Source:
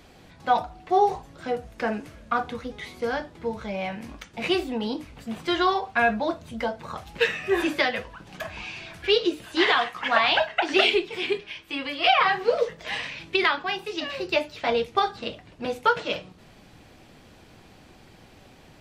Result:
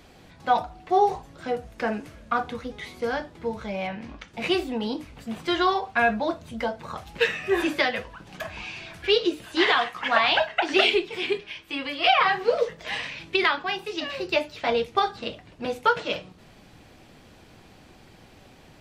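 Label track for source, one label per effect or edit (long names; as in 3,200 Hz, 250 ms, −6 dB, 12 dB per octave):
3.870000	4.280000	low-pass filter 4,600 Hz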